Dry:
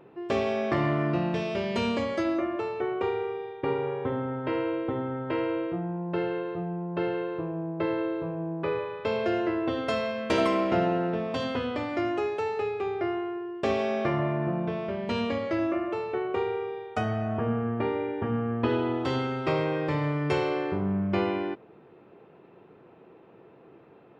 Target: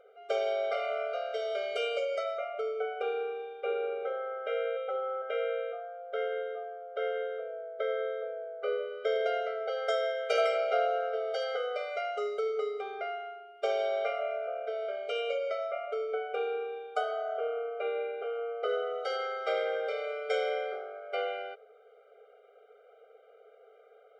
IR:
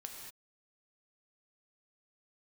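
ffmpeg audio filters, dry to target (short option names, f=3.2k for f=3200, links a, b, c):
-filter_complex "[0:a]asettb=1/sr,asplit=3[a][b][c];[a]atrim=end=4.764[d];[b]atrim=start=4.76:end=5.22,asetpts=PTS-STARTPTS,afade=t=in:d=0.004:c=qsin,afade=t=out:st=0.456:d=0.004:c=qsin,aecho=1:1:5.4:0.67,atrim=end_sample=20286[e];[c]atrim=start=5.216[f];[d][e]acrossfade=d=0.004:c1=hsin:c2=qsin[g];[g][f]acrossfade=d=0.004:c1=qsin:c2=hsin,afftfilt=real='re*eq(mod(floor(b*sr/1024/400),2),1)':imag='im*eq(mod(floor(b*sr/1024/400),2),1)':win_size=1024:overlap=0.75"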